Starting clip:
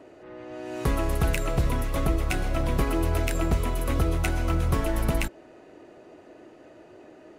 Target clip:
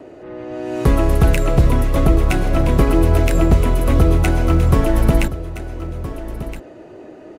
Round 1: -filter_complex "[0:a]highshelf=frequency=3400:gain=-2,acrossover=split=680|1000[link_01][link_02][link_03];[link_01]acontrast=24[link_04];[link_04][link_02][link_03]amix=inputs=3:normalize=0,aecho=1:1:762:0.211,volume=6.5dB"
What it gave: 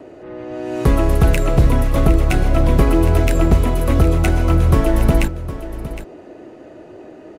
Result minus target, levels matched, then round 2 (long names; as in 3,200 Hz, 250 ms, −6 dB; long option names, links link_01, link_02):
echo 557 ms early
-filter_complex "[0:a]highshelf=frequency=3400:gain=-2,acrossover=split=680|1000[link_01][link_02][link_03];[link_01]acontrast=24[link_04];[link_04][link_02][link_03]amix=inputs=3:normalize=0,aecho=1:1:1319:0.211,volume=6.5dB"